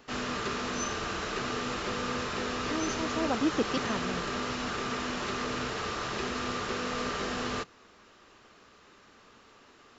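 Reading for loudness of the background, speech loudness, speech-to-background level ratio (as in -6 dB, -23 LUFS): -33.0 LUFS, -33.5 LUFS, -0.5 dB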